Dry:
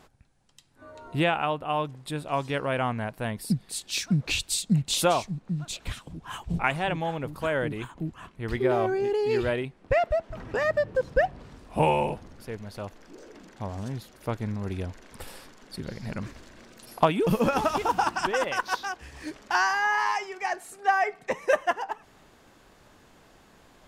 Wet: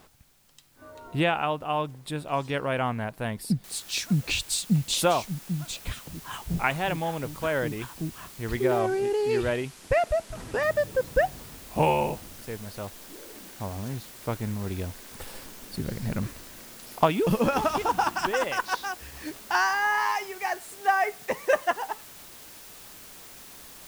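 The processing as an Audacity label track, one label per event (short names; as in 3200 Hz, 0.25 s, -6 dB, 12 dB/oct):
3.640000	3.640000	noise floor step -64 dB -47 dB
8.790000	10.630000	LPF 11000 Hz 24 dB/oct
15.340000	16.270000	low shelf 370 Hz +6 dB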